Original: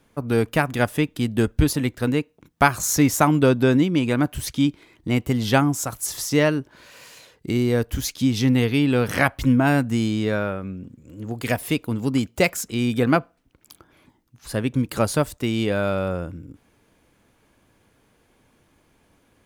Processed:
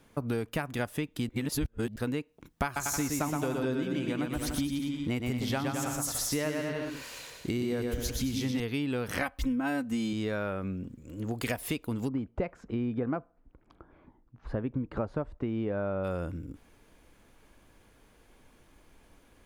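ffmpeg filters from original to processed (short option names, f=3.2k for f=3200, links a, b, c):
-filter_complex "[0:a]asettb=1/sr,asplit=3[a][b][c];[a]atrim=end=2.644[d];[b]atrim=start=2.64:end=8.6,asetpts=PTS-STARTPTS,afade=t=in:d=0.004:c=qsin,afade=t=out:st=5.956:d=0.004:c=qsin,aecho=1:1:120|216|292.8|354.2|403.4:0.631|0.398|0.251|0.158|0.1,atrim=end_sample=262836[e];[c]atrim=start=8.596[f];[d][e]acrossfade=d=0.004:c1=hsin:c2=qsin[g];[g][f]acrossfade=d=0.004:c1=qsin:c2=hsin,asettb=1/sr,asplit=3[h][i][j];[h]atrim=end=9.214[k];[i]atrim=start=9.21:end=10.13,asetpts=PTS-STARTPTS,afade=t=in:d=0.004:c=qsin,afade=t=out:st=0.916:d=0.004:c=qsin,aecho=1:1:3.9:0.73,atrim=end_sample=40572[l];[j]atrim=start=10.126[m];[k][l]acrossfade=d=0.004:c1=hsin:c2=qsin[n];[n][m]acrossfade=d=0.004:c1=qsin:c2=hsin,asplit=3[o][p][q];[o]afade=t=out:st=12.07:d=0.02[r];[p]lowpass=1.2k,afade=t=in:st=12.07:d=0.02,afade=t=out:st=16.03:d=0.02[s];[q]afade=t=in:st=16.03:d=0.02[t];[r][s][t]amix=inputs=3:normalize=0,asplit=3[u][v][w];[u]atrim=end=1.292[x];[v]atrim=start=1.288:end=1.962,asetpts=PTS-STARTPTS,areverse[y];[w]atrim=start=1.958[z];[x][y]acrossfade=d=0.004:c1=hsin:c2=hsin[aa];[aa][z]acrossfade=d=0.004:c1=hsin:c2=hsin,asubboost=boost=4:cutoff=50,acompressor=threshold=-29dB:ratio=6"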